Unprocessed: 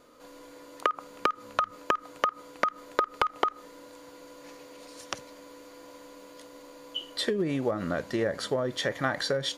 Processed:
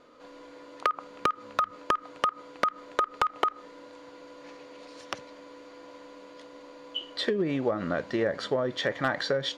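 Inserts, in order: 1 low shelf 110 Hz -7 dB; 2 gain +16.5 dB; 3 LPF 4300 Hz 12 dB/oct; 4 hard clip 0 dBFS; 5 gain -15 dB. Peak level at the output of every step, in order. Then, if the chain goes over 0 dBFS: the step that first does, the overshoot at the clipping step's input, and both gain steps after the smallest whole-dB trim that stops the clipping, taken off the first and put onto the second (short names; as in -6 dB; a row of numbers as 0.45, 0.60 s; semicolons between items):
-10.5, +6.0, +6.0, 0.0, -15.0 dBFS; step 2, 6.0 dB; step 2 +10.5 dB, step 5 -9 dB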